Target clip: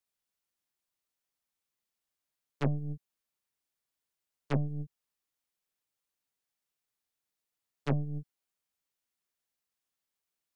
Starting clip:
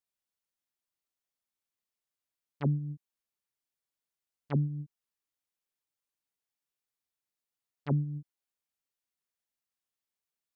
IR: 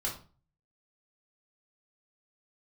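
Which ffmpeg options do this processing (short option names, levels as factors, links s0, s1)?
-filter_complex "[0:a]acrossover=split=170|370[s0][s1][s2];[s0]acompressor=threshold=0.0158:ratio=4[s3];[s1]acompressor=threshold=0.00447:ratio=4[s4];[s2]acompressor=threshold=0.01:ratio=4[s5];[s3][s4][s5]amix=inputs=3:normalize=0,aeval=exprs='0.0596*(cos(1*acos(clip(val(0)/0.0596,-1,1)))-cos(1*PI/2))+0.0106*(cos(3*acos(clip(val(0)/0.0596,-1,1)))-cos(3*PI/2))+0.00596*(cos(6*acos(clip(val(0)/0.0596,-1,1)))-cos(6*PI/2))':c=same,volume=2.82"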